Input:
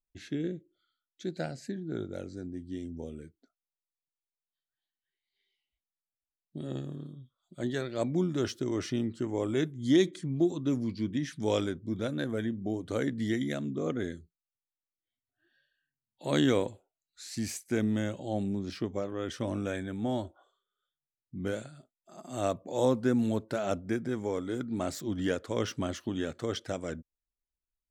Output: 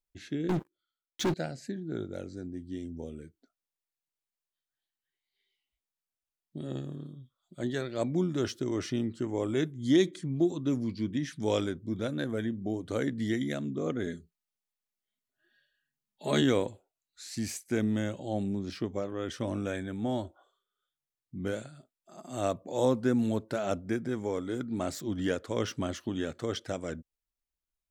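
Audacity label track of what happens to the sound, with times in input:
0.490000	1.340000	waveshaping leveller passes 5
14.060000	16.420000	comb 4.8 ms, depth 74%

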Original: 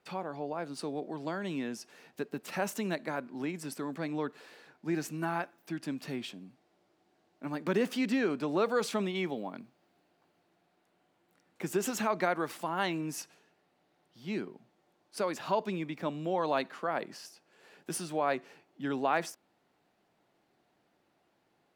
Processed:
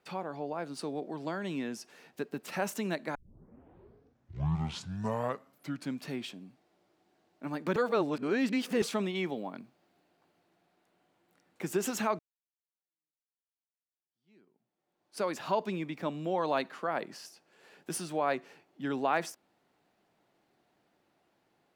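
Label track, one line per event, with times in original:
3.150000	3.150000	tape start 2.92 s
7.760000	8.820000	reverse
12.190000	15.230000	fade in exponential

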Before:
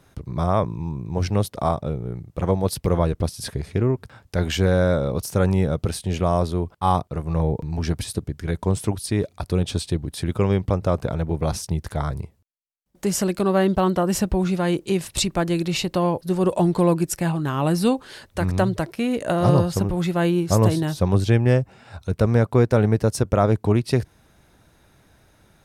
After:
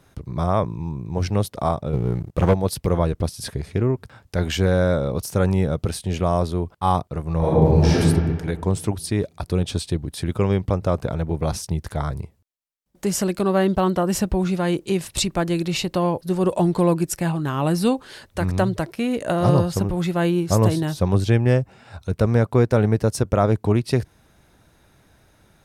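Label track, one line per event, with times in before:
1.930000	2.540000	waveshaping leveller passes 2
7.390000	7.970000	reverb throw, RT60 1.7 s, DRR -10 dB

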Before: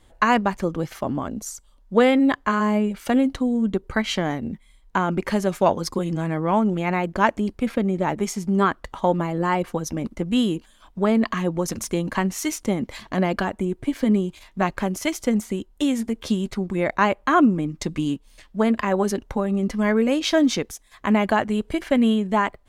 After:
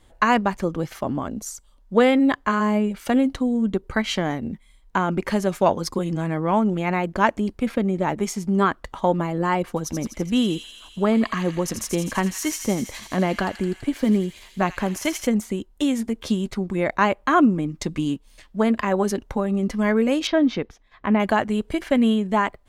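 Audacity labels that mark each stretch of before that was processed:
9.680000	15.270000	feedback echo behind a high-pass 83 ms, feedback 76%, high-pass 2.8 kHz, level -5.5 dB
20.270000	21.200000	distance through air 270 m

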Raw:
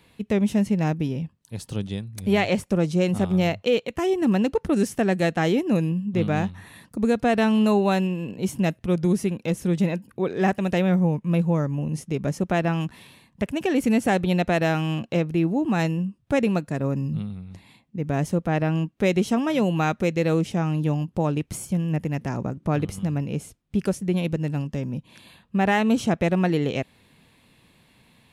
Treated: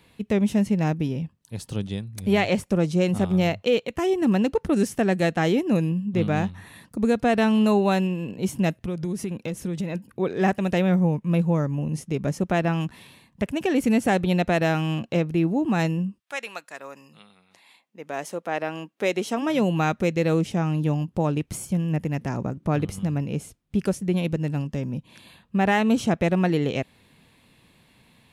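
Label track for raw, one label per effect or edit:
8.860000	9.950000	compression, threshold -24 dBFS
16.180000	19.410000	high-pass 1.3 kHz -> 320 Hz

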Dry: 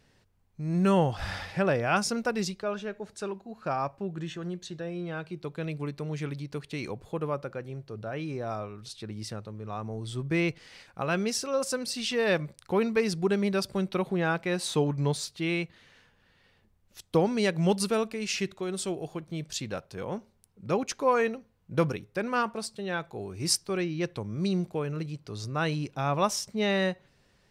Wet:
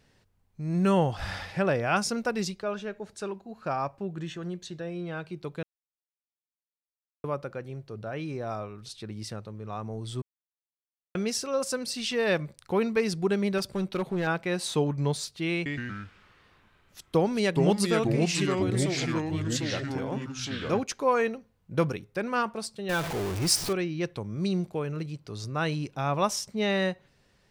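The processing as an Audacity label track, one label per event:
5.630000	7.240000	mute
10.220000	11.150000	mute
13.580000	14.270000	hard clipper -23.5 dBFS
15.540000	20.840000	ever faster or slower copies 117 ms, each echo -3 st, echoes 3
22.890000	23.730000	jump at every zero crossing of -28 dBFS

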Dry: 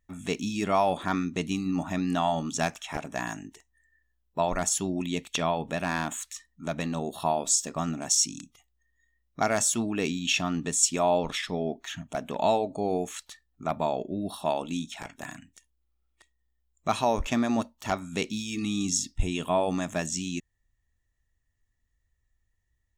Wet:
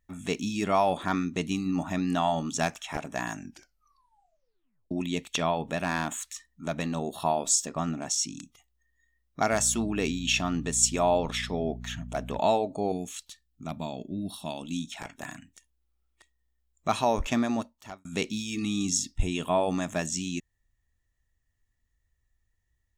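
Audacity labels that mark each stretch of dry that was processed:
3.330000	3.330000	tape stop 1.58 s
7.660000	8.390000	treble shelf 6.2 kHz -9.5 dB
9.510000	12.380000	mains buzz 60 Hz, harmonics 4, -40 dBFS
12.920000	14.880000	high-order bell 880 Hz -10 dB 2.8 oct
17.380000	18.050000	fade out

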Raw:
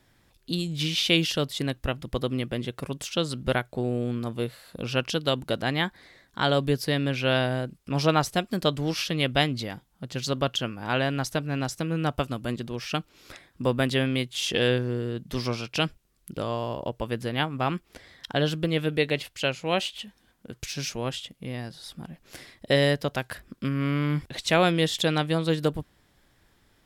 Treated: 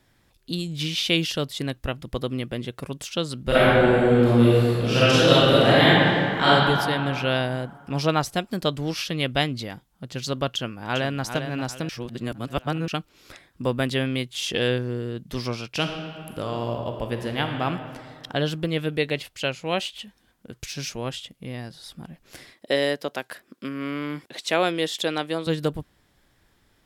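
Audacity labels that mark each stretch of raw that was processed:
3.470000	6.460000	reverb throw, RT60 2.5 s, DRR -11.5 dB
10.490000	11.220000	echo throw 400 ms, feedback 35%, level -8 dB
11.890000	12.880000	reverse
15.740000	17.630000	reverb throw, RT60 2.2 s, DRR 4 dB
22.530000	25.470000	Chebyshev high-pass 310 Hz

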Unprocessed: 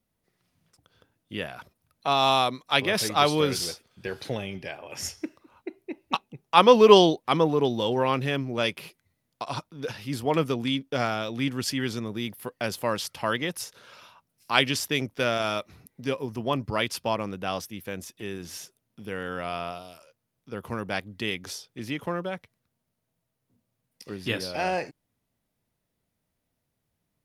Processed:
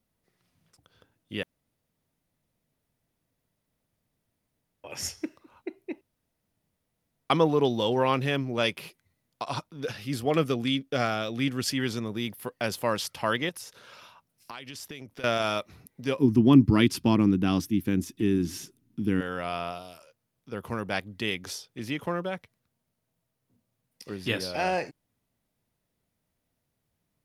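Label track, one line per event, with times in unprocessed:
1.430000	4.840000	room tone
6.010000	7.300000	room tone
9.830000	11.730000	band-stop 930 Hz, Q 6.1
13.490000	15.240000	compression 10:1, threshold -37 dBFS
16.190000	19.210000	resonant low shelf 410 Hz +10 dB, Q 3

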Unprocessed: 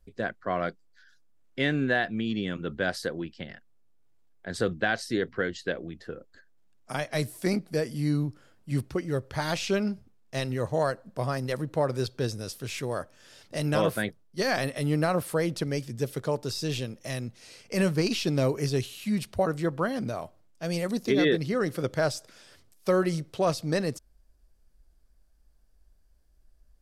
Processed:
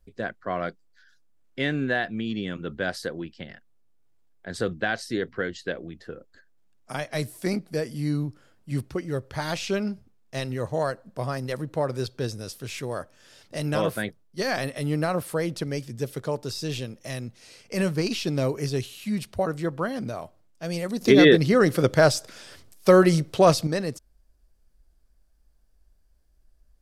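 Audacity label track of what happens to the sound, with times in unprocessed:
21.010000	23.670000	gain +8.5 dB

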